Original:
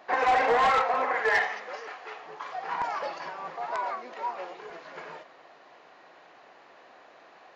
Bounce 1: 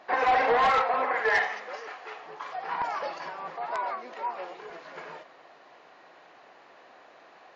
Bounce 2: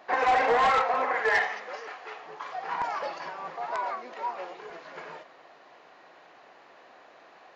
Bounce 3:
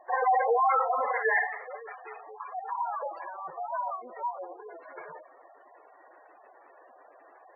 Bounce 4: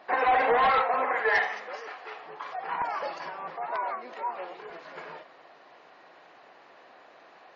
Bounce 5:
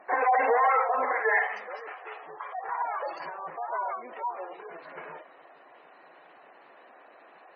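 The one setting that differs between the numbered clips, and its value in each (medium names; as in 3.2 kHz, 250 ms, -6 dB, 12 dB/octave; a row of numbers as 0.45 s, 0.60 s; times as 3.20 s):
spectral gate, under each frame's peak: -45 dB, -60 dB, -10 dB, -35 dB, -20 dB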